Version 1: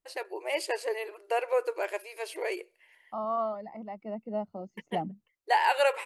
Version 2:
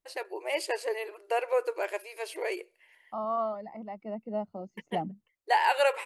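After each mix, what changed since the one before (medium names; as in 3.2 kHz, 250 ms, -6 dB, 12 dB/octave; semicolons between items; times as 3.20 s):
no change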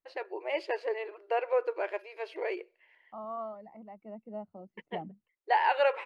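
second voice -7.0 dB; master: add distance through air 270 m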